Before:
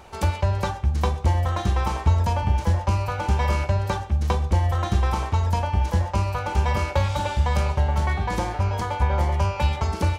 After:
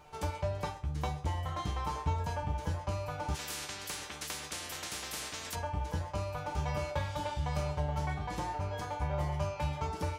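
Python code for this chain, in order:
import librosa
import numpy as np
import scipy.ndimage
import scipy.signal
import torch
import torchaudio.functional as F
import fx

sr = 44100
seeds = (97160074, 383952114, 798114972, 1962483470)

y = fx.comb_fb(x, sr, f0_hz=150.0, decay_s=0.25, harmonics='all', damping=0.0, mix_pct=90)
y = fx.spectral_comp(y, sr, ratio=10.0, at=(3.34, 5.54), fade=0.02)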